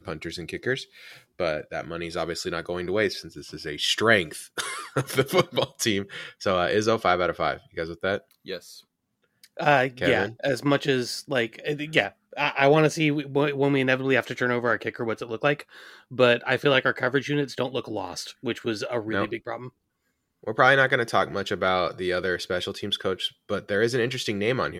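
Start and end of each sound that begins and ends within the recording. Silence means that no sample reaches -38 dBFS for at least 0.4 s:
9.44–19.69 s

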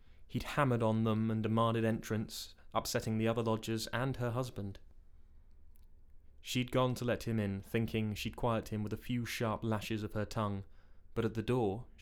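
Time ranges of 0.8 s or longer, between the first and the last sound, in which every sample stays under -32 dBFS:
4.60–6.49 s

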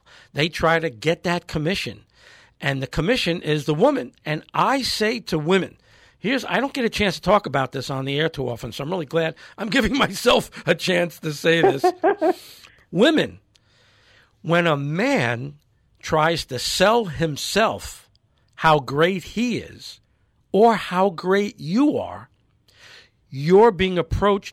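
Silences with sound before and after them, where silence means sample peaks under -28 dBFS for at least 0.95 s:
13.29–14.45 s
22.18–23.33 s

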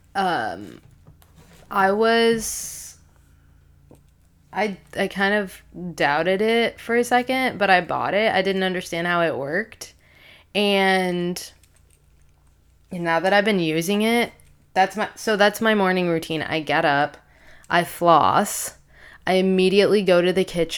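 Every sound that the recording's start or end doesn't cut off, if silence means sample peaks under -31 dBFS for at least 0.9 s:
4.53–11.47 s

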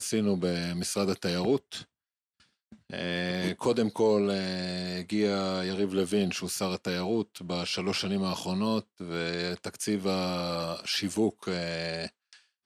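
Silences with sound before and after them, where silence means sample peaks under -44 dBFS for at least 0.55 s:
1.83–2.72 s

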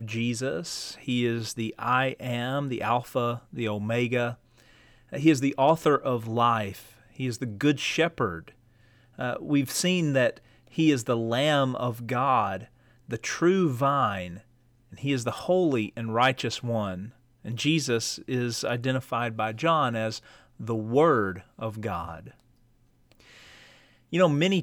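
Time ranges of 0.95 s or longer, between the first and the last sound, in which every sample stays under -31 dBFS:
22.15–24.13 s

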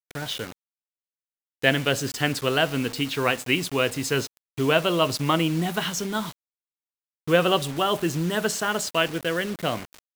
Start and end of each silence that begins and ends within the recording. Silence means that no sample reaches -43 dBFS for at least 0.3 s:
0.52–1.62 s
6.32–7.27 s

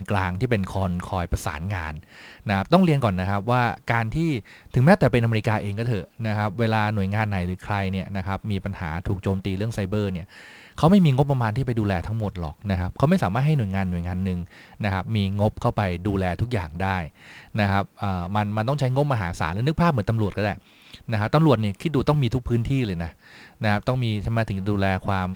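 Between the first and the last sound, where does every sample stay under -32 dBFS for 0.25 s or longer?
1.98–2.46 s
4.40–4.74 s
10.23–10.78 s
14.44–14.80 s
17.07–17.55 s
20.58–20.94 s
23.09–23.61 s

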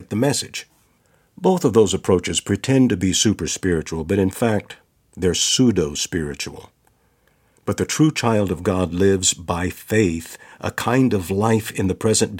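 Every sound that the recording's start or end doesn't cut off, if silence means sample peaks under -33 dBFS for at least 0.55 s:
1.38–6.65 s

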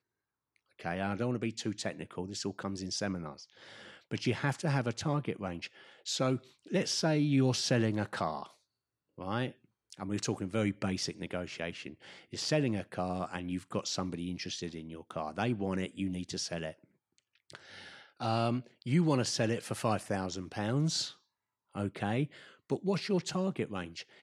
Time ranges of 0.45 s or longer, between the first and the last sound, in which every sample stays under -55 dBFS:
8.55–9.18 s
21.17–21.74 s

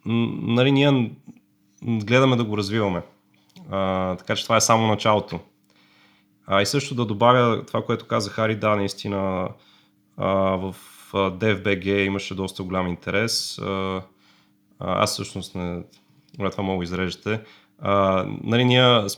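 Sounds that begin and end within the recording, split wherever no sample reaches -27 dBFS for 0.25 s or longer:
1.85–3.01 s
3.70–5.38 s
6.48–9.47 s
10.18–10.71 s
11.14–14.00 s
14.82–15.81 s
16.39–17.38 s

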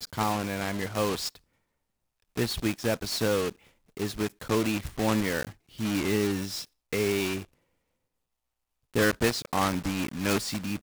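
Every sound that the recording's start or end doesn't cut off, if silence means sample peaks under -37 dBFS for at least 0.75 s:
2.37–7.42 s

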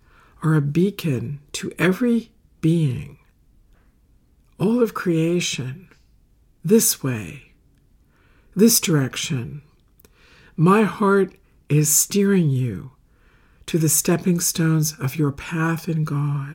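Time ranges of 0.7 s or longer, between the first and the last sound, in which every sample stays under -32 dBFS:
3.07–4.60 s
5.76–6.65 s
7.37–8.56 s
12.87–13.68 s

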